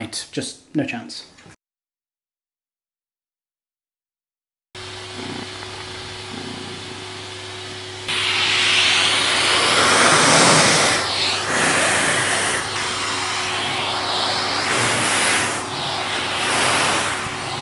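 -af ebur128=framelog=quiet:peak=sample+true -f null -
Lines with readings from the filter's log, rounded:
Integrated loudness:
  I:         -16.8 LUFS
  Threshold: -28.2 LUFS
Loudness range:
  LRA:        19.1 LU
  Threshold: -38.6 LUFS
  LRA low:   -33.0 LUFS
  LRA high:  -13.9 LUFS
Sample peak:
  Peak:       -1.2 dBFS
True peak:
  Peak:       -1.1 dBFS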